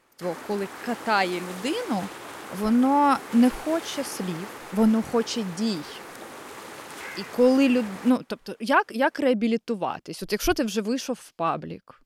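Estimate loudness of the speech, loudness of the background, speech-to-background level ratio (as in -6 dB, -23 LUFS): -25.0 LUFS, -39.0 LUFS, 14.0 dB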